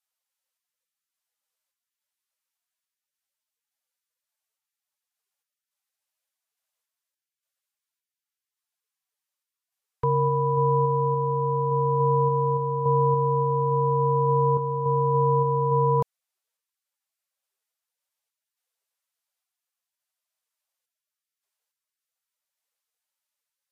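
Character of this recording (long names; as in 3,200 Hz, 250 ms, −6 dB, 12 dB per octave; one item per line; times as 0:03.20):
sample-and-hold tremolo
Ogg Vorbis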